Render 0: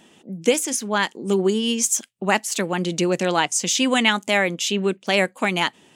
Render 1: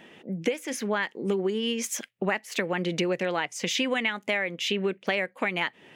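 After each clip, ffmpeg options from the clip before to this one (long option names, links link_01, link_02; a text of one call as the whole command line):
ffmpeg -i in.wav -af "equalizer=frequency=125:width_type=o:width=1:gain=4,equalizer=frequency=500:width_type=o:width=1:gain=7,equalizer=frequency=2000:width_type=o:width=1:gain=11,equalizer=frequency=8000:width_type=o:width=1:gain=-11,acompressor=threshold=-21dB:ratio=10,volume=-2.5dB" out.wav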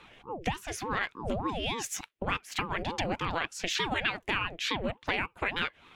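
ffmpeg -i in.wav -af "equalizer=frequency=2300:width=0.42:gain=3.5,aeval=exprs='val(0)*sin(2*PI*430*n/s+430*0.65/3.4*sin(2*PI*3.4*n/s))':channel_layout=same,volume=-3dB" out.wav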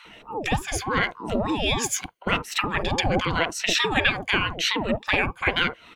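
ffmpeg -i in.wav -filter_complex "[0:a]afftfilt=real='re*pow(10,9/40*sin(2*PI*(1.9*log(max(b,1)*sr/1024/100)/log(2)-(-0.87)*(pts-256)/sr)))':imag='im*pow(10,9/40*sin(2*PI*(1.9*log(max(b,1)*sr/1024/100)/log(2)-(-0.87)*(pts-256)/sr)))':win_size=1024:overlap=0.75,acrossover=split=1000[link_01][link_02];[link_01]adelay=50[link_03];[link_03][link_02]amix=inputs=2:normalize=0,volume=8dB" out.wav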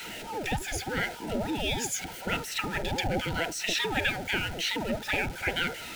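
ffmpeg -i in.wav -af "aeval=exprs='val(0)+0.5*0.0447*sgn(val(0))':channel_layout=same,asuperstop=centerf=1100:order=12:qfactor=4.1,volume=-8dB" out.wav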